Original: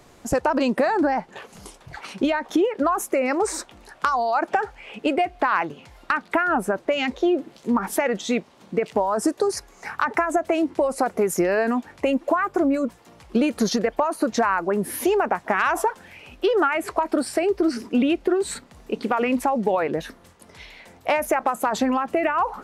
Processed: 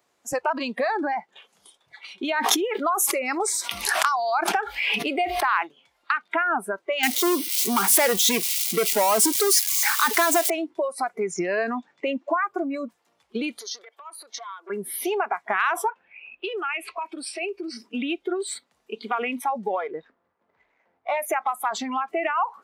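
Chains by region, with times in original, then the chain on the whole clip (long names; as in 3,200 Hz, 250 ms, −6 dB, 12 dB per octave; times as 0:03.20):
0:02.25–0:05.67: high-shelf EQ 8,200 Hz +11 dB + background raised ahead of every attack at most 24 dB per second
0:07.03–0:10.50: spike at every zero crossing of −21 dBFS + dynamic equaliser 1,100 Hz, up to −4 dB, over −31 dBFS, Q 0.71 + leveller curve on the samples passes 3
0:11.20–0:12.43: low-pass filter 7,400 Hz 24 dB per octave + low shelf with overshoot 110 Hz −9.5 dB, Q 3
0:13.59–0:14.70: high-pass filter 360 Hz 24 dB per octave + downward compressor 10 to 1, threshold −27 dBFS + saturating transformer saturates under 1,600 Hz
0:15.90–0:17.72: low-pass that shuts in the quiet parts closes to 1,700 Hz, open at −19.5 dBFS + parametric band 2,600 Hz +12.5 dB 0.23 octaves + downward compressor, threshold −21 dBFS
0:19.68–0:21.17: running median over 15 samples + low-pass filter 2,600 Hz
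whole clip: noise reduction from a noise print of the clip's start 15 dB; high-pass filter 670 Hz 6 dB per octave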